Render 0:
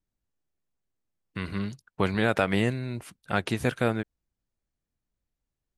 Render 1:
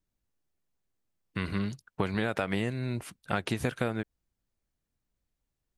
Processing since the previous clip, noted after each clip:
downward compressor 10 to 1, threshold −26 dBFS, peak gain reduction 9 dB
level +1.5 dB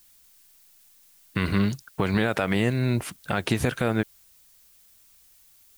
brickwall limiter −19.5 dBFS, peak gain reduction 7.5 dB
background noise blue −66 dBFS
level +9 dB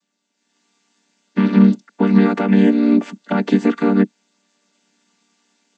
channel vocoder with a chord as carrier minor triad, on G3
automatic gain control gain up to 12.5 dB
level +1 dB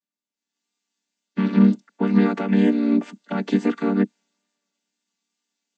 tape wow and flutter 25 cents
multiband upward and downward expander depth 40%
level −5 dB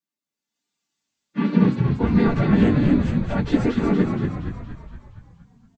random phases in long frames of 50 ms
echo with shifted repeats 234 ms, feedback 56%, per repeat −60 Hz, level −4 dB

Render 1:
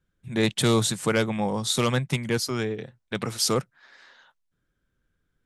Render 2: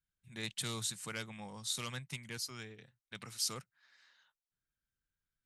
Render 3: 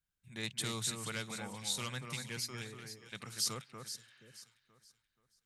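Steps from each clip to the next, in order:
guitar amp tone stack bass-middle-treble 5-5-5; notch filter 3,400 Hz, Q 22; level −4 dB
delay that swaps between a low-pass and a high-pass 239 ms, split 2,100 Hz, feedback 56%, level −5 dB; healed spectral selection 0:03.95–0:04.40, 640–3,200 Hz before; level +1 dB

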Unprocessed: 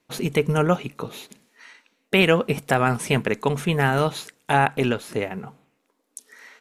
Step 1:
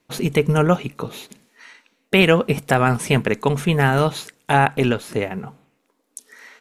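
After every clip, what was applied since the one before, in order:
low-shelf EQ 150 Hz +4 dB
level +2.5 dB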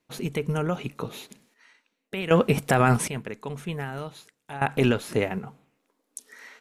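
brickwall limiter −8 dBFS, peak gain reduction 6.5 dB
sample-and-hold tremolo 1.3 Hz, depth 85%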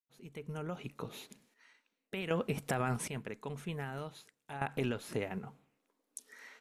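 fade in at the beginning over 1.30 s
downward compressor 2 to 1, threshold −28 dBFS, peak gain reduction 8 dB
level −7 dB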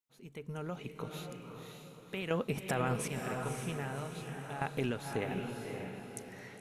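feedback delay with all-pass diffusion 548 ms, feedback 43%, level −4.5 dB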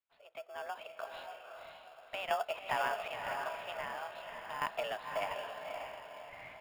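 single-sideband voice off tune +200 Hz 410–3,200 Hz
in parallel at −10 dB: decimation without filtering 22×
on the sum: level +1 dB

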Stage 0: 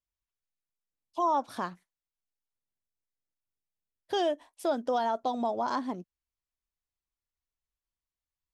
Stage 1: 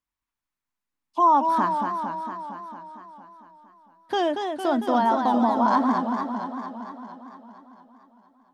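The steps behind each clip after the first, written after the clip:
octave-band graphic EQ 250/500/1,000/2,000 Hz +12/−4/+10/+5 dB
feedback echo with a swinging delay time 228 ms, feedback 68%, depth 151 cents, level −5.5 dB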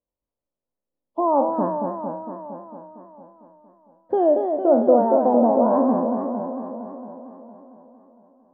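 peak hold with a decay on every bin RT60 0.55 s
low-pass with resonance 540 Hz, resonance Q 4.9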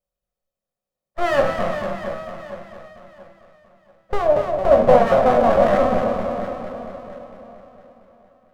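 lower of the sound and its delayed copy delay 1.6 ms
rectangular room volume 330 cubic metres, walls furnished, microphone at 1 metre
level +2.5 dB

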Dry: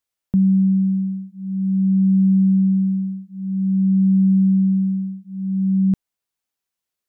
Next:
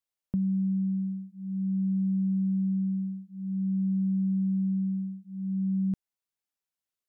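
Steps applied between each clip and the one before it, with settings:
downward compressor, threshold −17 dBFS, peak gain reduction 4.5 dB
level −8 dB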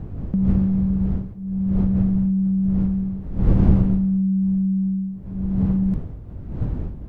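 wind on the microphone 120 Hz −31 dBFS
level +7 dB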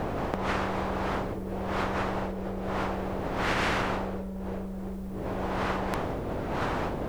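every bin compressed towards the loudest bin 10 to 1
level −5 dB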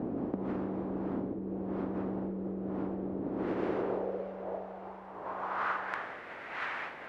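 feedback delay with all-pass diffusion 559 ms, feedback 58%, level −15.5 dB
band-pass filter sweep 270 Hz → 2,000 Hz, 0:03.21–0:06.29
level +3.5 dB

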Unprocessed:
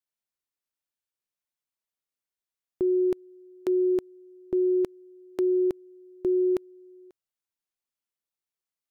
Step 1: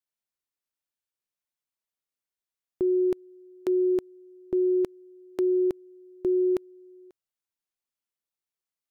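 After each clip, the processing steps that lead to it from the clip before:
no processing that can be heard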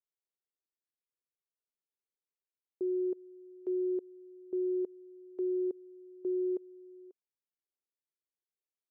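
brickwall limiter −26.5 dBFS, peak gain reduction 7 dB
resonant band-pass 410 Hz, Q 3.1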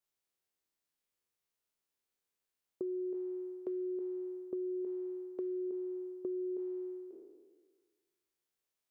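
peak hold with a decay on every bin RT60 1.49 s
downward compressor, threshold −40 dBFS, peak gain reduction 10 dB
level +3.5 dB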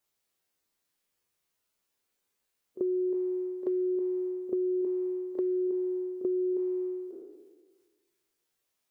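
spectral magnitudes quantised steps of 15 dB
echo ahead of the sound 36 ms −13.5 dB
level +8 dB

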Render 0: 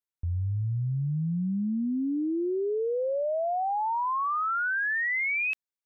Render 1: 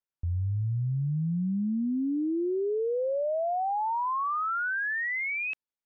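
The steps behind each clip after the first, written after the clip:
low-pass filter 2,100 Hz 6 dB per octave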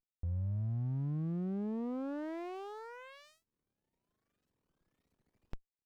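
brickwall limiter −32 dBFS, peak gain reduction 7 dB
harmonic generator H 5 −28 dB, 6 −35 dB, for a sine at −32 dBFS
windowed peak hold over 65 samples
level +1 dB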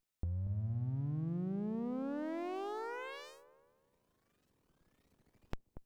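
downward compressor, threshold −43 dBFS, peak gain reduction 9.5 dB
on a send: delay with a low-pass on its return 235 ms, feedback 35%, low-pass 830 Hz, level −9.5 dB
on the sum: level +7 dB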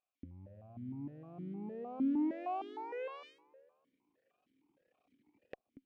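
formant filter that steps through the vowels 6.5 Hz
level +10 dB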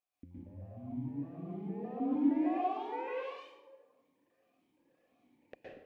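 convolution reverb RT60 0.75 s, pre-delay 111 ms, DRR −6 dB
level −3 dB

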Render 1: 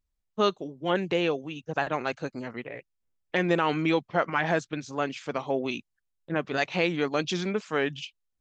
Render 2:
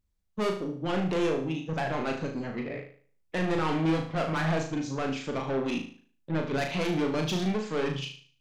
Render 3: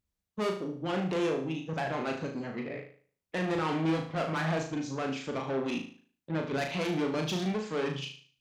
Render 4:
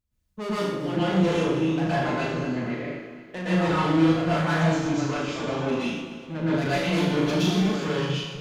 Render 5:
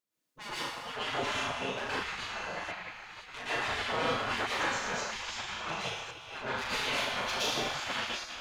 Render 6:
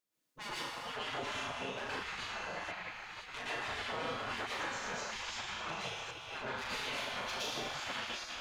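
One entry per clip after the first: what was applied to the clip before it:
parametric band 140 Hz +8 dB 2.7 octaves; soft clipping −26 dBFS, distortion −6 dB; on a send: flutter between parallel walls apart 6.4 metres, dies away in 0.47 s
high-pass filter 100 Hz 6 dB per octave; level −2 dB
feedback delay that plays each chunk backwards 123 ms, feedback 70%, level −11 dB; low-shelf EQ 81 Hz +10 dB; dense smooth reverb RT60 0.58 s, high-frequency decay 1×, pre-delay 105 ms, DRR −8.5 dB; level −3 dB
delay that plays each chunk backwards 679 ms, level −11 dB; low-shelf EQ 120 Hz −4.5 dB; gate on every frequency bin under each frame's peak −15 dB weak
downward compressor 2.5 to 1, threshold −39 dBFS, peak gain reduction 8.5 dB

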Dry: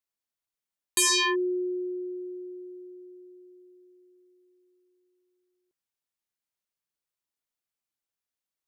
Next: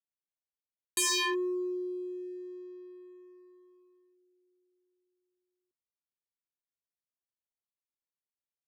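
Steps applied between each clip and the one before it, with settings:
adaptive Wiener filter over 25 samples
leveller curve on the samples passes 1
level −6.5 dB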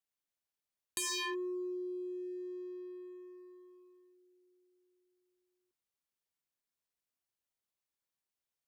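downward compressor 2.5 to 1, threshold −44 dBFS, peak gain reduction 11 dB
level +2.5 dB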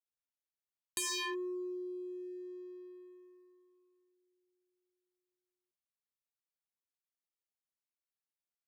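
expander for the loud parts 1.5 to 1, over −58 dBFS
level +1 dB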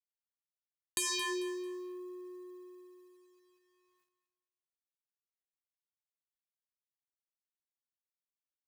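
mu-law and A-law mismatch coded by A
repeating echo 222 ms, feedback 28%, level −12 dB
level +5 dB

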